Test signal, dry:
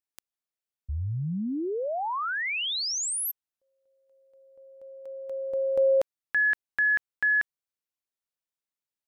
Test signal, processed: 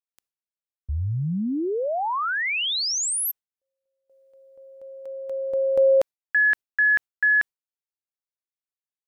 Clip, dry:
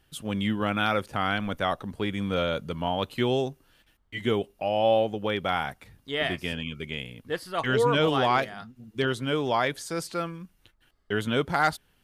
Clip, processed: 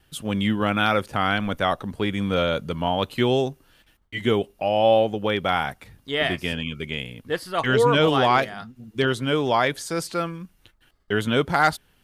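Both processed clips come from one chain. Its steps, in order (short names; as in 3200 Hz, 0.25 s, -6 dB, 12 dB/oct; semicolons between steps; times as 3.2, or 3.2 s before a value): gate with hold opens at -60 dBFS, hold 17 ms, range -15 dB; gain +4.5 dB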